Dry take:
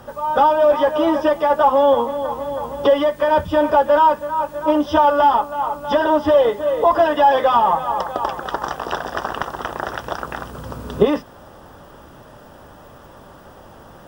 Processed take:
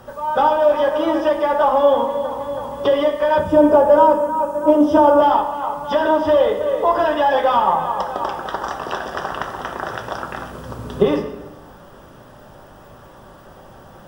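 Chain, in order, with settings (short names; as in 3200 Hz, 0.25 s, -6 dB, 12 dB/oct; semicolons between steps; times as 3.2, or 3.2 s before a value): 3.39–5.22 ten-band EQ 250 Hz +8 dB, 500 Hz +5 dB, 2000 Hz -5 dB, 4000 Hz -8 dB, 8000 Hz +5 dB; reverb RT60 1.0 s, pre-delay 5 ms, DRR 3.5 dB; gain -2 dB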